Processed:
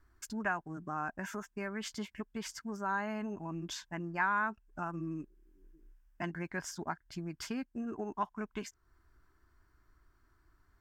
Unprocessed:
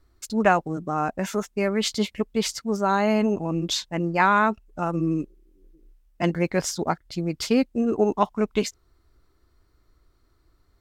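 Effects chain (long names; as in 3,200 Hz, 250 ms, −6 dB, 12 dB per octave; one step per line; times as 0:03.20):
downward compressor 2 to 1, threshold −37 dBFS, peak gain reduction 13 dB
thirty-one-band graphic EQ 500 Hz −11 dB, 1,000 Hz +6 dB, 1,600 Hz +12 dB, 4,000 Hz −9 dB, 10,000 Hz −3 dB
level −5.5 dB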